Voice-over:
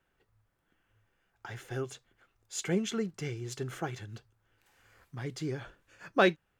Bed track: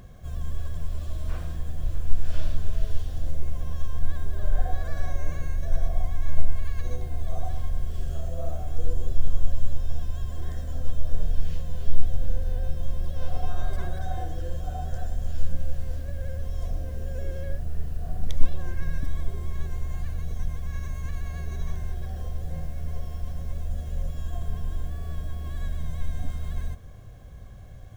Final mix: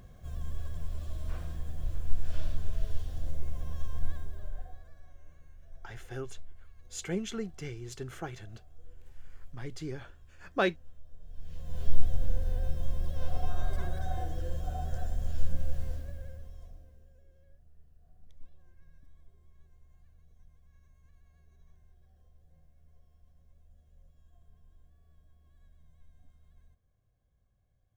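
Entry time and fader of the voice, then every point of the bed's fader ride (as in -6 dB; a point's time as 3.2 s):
4.40 s, -3.5 dB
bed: 4.07 s -6 dB
5.01 s -26 dB
11.2 s -26 dB
11.8 s -3.5 dB
15.85 s -3.5 dB
17.24 s -30 dB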